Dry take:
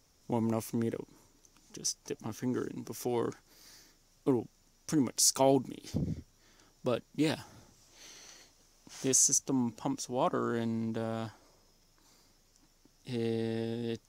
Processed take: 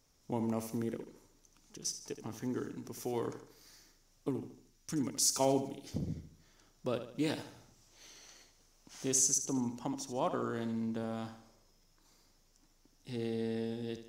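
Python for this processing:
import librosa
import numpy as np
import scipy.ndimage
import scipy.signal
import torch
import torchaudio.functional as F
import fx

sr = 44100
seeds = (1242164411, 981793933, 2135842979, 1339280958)

y = fx.peak_eq(x, sr, hz=630.0, db=fx.line((4.28, -12.5), (5.06, -6.0)), octaves=1.6, at=(4.28, 5.06), fade=0.02)
y = fx.echo_feedback(y, sr, ms=75, feedback_pct=44, wet_db=-10.5)
y = F.gain(torch.from_numpy(y), -4.0).numpy()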